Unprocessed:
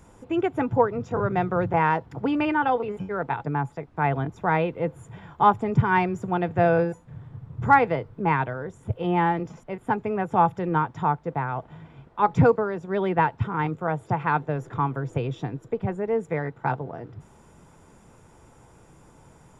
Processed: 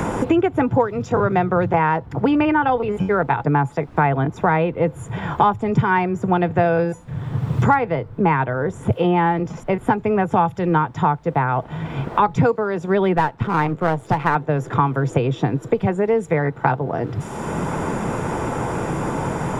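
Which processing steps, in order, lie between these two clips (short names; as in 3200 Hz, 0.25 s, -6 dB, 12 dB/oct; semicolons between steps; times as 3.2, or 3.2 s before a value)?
13.17–14.35 half-wave gain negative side -7 dB; three-band squash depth 100%; gain +5.5 dB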